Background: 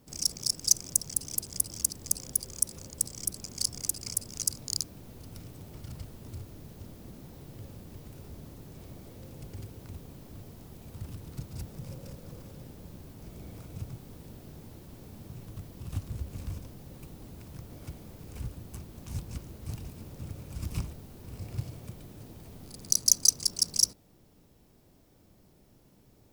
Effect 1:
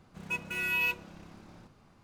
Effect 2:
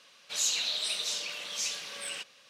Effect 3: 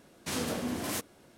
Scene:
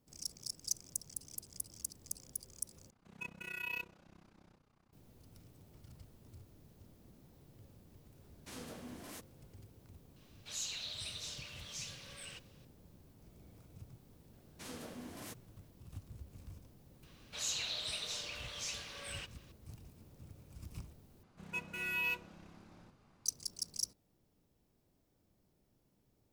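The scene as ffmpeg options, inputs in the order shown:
-filter_complex "[1:a]asplit=2[s0][s1];[3:a]asplit=2[s2][s3];[2:a]asplit=2[s4][s5];[0:a]volume=0.2[s6];[s0]tremolo=f=31:d=0.889[s7];[s5]highshelf=f=2500:g=-6[s8];[s6]asplit=3[s9][s10][s11];[s9]atrim=end=2.904[s12];[s7]atrim=end=2.03,asetpts=PTS-STARTPTS,volume=0.398[s13];[s10]atrim=start=4.926:end=21.234[s14];[s1]atrim=end=2.03,asetpts=PTS-STARTPTS,volume=0.473[s15];[s11]atrim=start=23.256[s16];[s2]atrim=end=1.37,asetpts=PTS-STARTPTS,volume=0.168,afade=t=in:d=0.004:c=hsin,afade=t=out:st=1.366:d=0.004:c=hsin,adelay=8200[s17];[s4]atrim=end=2.49,asetpts=PTS-STARTPTS,volume=0.251,afade=t=in:d=0.004:c=hsin,afade=t=out:st=2.486:d=0.004:c=hsin,adelay=10160[s18];[s3]atrim=end=1.37,asetpts=PTS-STARTPTS,volume=0.188,afade=t=in:d=0.004:c=hsin,afade=t=out:st=1.366:d=0.004:c=hsin,adelay=14330[s19];[s8]atrim=end=2.49,asetpts=PTS-STARTPTS,volume=0.631,afade=t=in:d=0.004:c=hsin,afade=t=out:st=2.486:d=0.004:c=hsin,adelay=17030[s20];[s12][s13]acrossfade=d=0.004:c1=hsin:c2=hsin[s21];[s21][s14]acrossfade=d=0.004:c1=hsin:c2=hsin[s22];[s22][s15]acrossfade=d=0.004:c1=hsin:c2=hsin[s23];[s23][s16]acrossfade=d=0.004:c1=hsin:c2=hsin[s24];[s24][s17][s18][s19][s20]amix=inputs=5:normalize=0"

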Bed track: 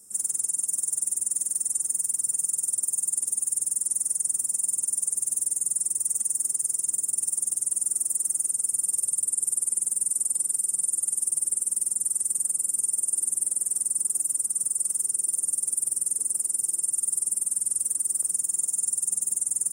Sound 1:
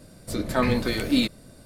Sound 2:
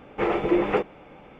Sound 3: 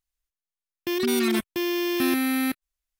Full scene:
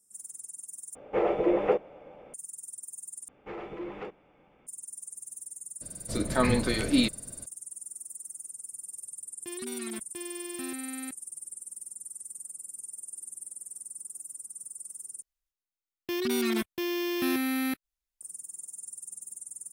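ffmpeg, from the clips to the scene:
-filter_complex "[2:a]asplit=2[s0][s1];[3:a]asplit=2[s2][s3];[0:a]volume=0.158[s4];[s0]equalizer=f=560:t=o:w=0.98:g=12[s5];[s1]asoftclip=type=tanh:threshold=0.141[s6];[1:a]lowpass=10000[s7];[s4]asplit=4[s8][s9][s10][s11];[s8]atrim=end=0.954[s12];[s5]atrim=end=1.39,asetpts=PTS-STARTPTS,volume=0.355[s13];[s9]atrim=start=2.336:end=3.284[s14];[s6]atrim=end=1.39,asetpts=PTS-STARTPTS,volume=0.188[s15];[s10]atrim=start=4.666:end=15.224[s16];[s3]atrim=end=2.99,asetpts=PTS-STARTPTS,volume=0.562[s17];[s11]atrim=start=18.206[s18];[s7]atrim=end=1.65,asetpts=PTS-STARTPTS,volume=0.794,afade=t=in:d=0.004:c=hsin,afade=t=out:st=1.646:d=0.004:c=hsin,adelay=256221S[s19];[s2]atrim=end=2.99,asetpts=PTS-STARTPTS,volume=0.178,afade=t=in:d=0.004:c=hsin,afade=t=out:st=2.986:d=0.004:c=hsin,adelay=8590[s20];[s12][s13]acrossfade=d=0.004:c1=hsin:c2=hsin[s21];[s21][s14]acrossfade=d=0.004:c1=hsin:c2=hsin[s22];[s22][s15]acrossfade=d=0.004:c1=hsin:c2=hsin[s23];[s23][s16]acrossfade=d=0.004:c1=hsin:c2=hsin[s24];[s24][s17]acrossfade=d=0.004:c1=hsin:c2=hsin[s25];[s25][s18]acrossfade=d=0.004:c1=hsin:c2=hsin[s26];[s26][s19][s20]amix=inputs=3:normalize=0"

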